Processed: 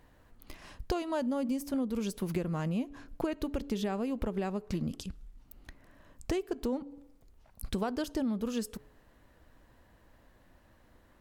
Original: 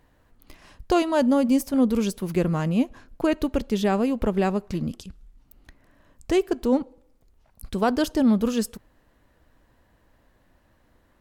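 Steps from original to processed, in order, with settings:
hum removal 142.3 Hz, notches 3
downward compressor 12 to 1, threshold −29 dBFS, peak gain reduction 15 dB

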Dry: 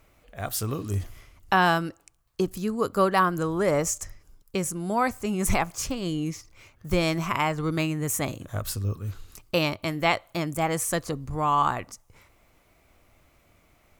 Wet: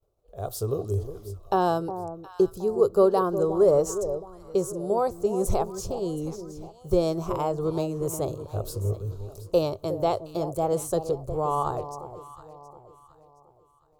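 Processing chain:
downward expander −50 dBFS
drawn EQ curve 120 Hz 0 dB, 270 Hz −10 dB, 400 Hz +9 dB, 1,300 Hz −9 dB, 2,000 Hz −26 dB, 3,900 Hz −7 dB
on a send: delay that swaps between a low-pass and a high-pass 360 ms, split 1,000 Hz, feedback 58%, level −10.5 dB

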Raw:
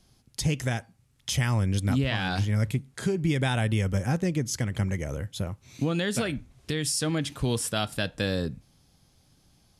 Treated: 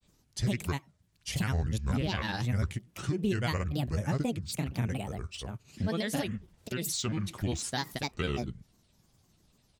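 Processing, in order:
granular cloud, grains 20 per second, spray 39 ms, pitch spread up and down by 7 semitones
level −3.5 dB

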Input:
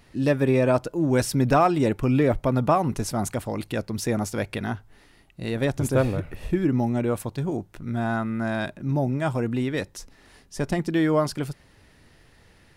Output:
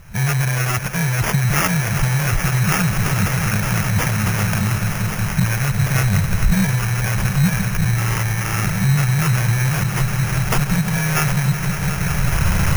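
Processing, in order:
samples in bit-reversed order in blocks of 32 samples
camcorder AGC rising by 28 dB per second
low-shelf EQ 480 Hz +8 dB
echo that builds up and dies away 184 ms, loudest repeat 5, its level −16 dB
brickwall limiter −14 dBFS, peak gain reduction 11.5 dB
brick-wall band-stop 210–1,300 Hz
decimation without filtering 11×
high-shelf EQ 8,400 Hz +8 dB
level +7 dB

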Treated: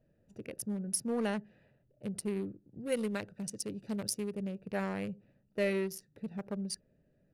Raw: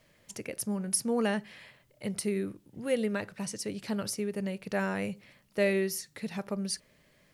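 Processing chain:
adaptive Wiener filter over 41 samples
in parallel at −5.5 dB: soft clipping −28.5 dBFS, distortion −11 dB
0:02.92–0:04.35: on the sum: high-shelf EQ 3,400 Hz +9.5 dB
level −6 dB

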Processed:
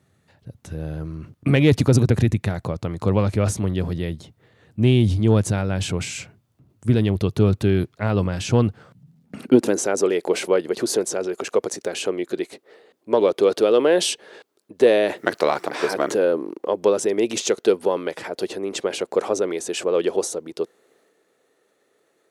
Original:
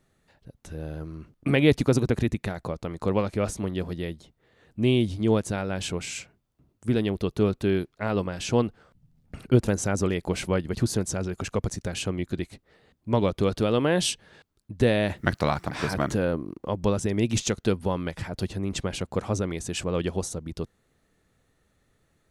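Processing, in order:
harmonic generator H 5 −27 dB, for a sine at −6.5 dBFS
transient designer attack +1 dB, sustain +5 dB
high-pass filter sweep 99 Hz → 410 Hz, 0:08.68–0:09.90
level +1 dB

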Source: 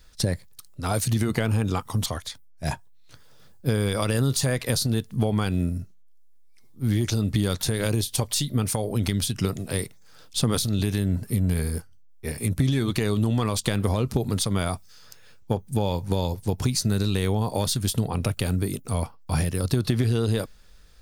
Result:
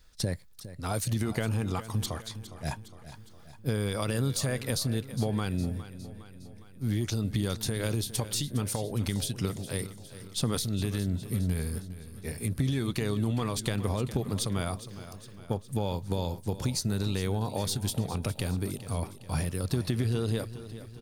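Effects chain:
repeating echo 410 ms, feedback 55%, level −14 dB
level −6 dB

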